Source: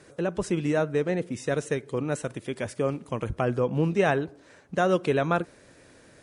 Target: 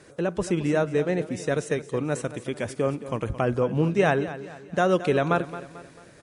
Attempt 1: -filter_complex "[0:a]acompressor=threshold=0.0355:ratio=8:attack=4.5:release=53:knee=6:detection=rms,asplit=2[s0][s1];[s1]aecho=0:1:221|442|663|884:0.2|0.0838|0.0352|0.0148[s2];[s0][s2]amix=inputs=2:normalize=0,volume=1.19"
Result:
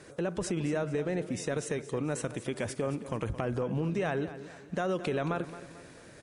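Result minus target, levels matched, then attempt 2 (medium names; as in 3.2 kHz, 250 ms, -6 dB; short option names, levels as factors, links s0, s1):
compression: peak gain reduction +12.5 dB
-filter_complex "[0:a]asplit=2[s0][s1];[s1]aecho=0:1:221|442|663|884:0.2|0.0838|0.0352|0.0148[s2];[s0][s2]amix=inputs=2:normalize=0,volume=1.19"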